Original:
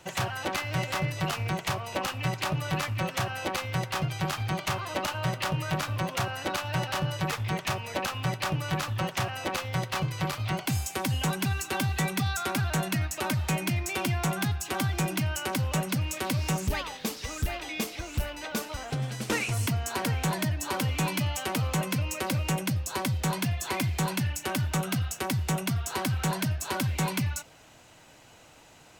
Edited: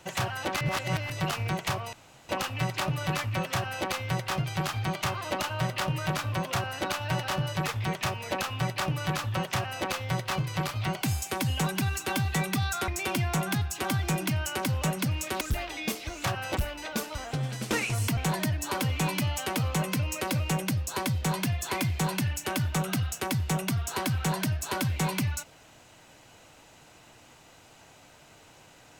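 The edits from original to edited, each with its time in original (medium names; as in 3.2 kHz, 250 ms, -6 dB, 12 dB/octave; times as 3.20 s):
0.61–1.10 s: reverse
1.93 s: insert room tone 0.36 s
3.17–3.50 s: copy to 18.16 s
12.52–13.78 s: delete
16.31–17.33 s: delete
19.76–20.16 s: delete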